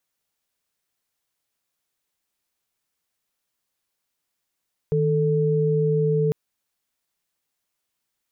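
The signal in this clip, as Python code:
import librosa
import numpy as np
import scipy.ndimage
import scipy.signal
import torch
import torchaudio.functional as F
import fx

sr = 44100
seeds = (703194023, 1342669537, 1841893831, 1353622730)

y = fx.chord(sr, length_s=1.4, notes=(51, 69), wave='sine', level_db=-20.5)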